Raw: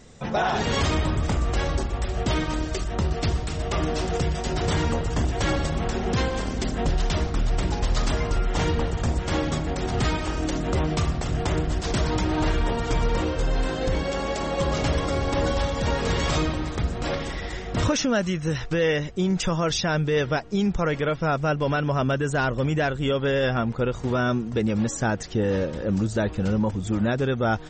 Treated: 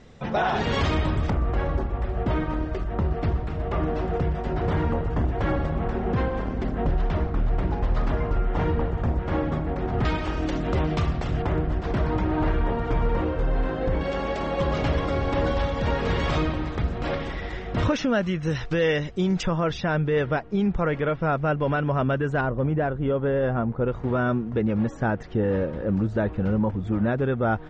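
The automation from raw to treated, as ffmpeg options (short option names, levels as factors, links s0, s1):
-af "asetnsamples=n=441:p=0,asendcmd='1.3 lowpass f 1600;10.05 lowpass f 3400;11.42 lowpass f 1800;14.01 lowpass f 3100;18.43 lowpass f 4800;19.43 lowpass f 2300;22.41 lowpass f 1200;23.88 lowpass f 1900',lowpass=3700"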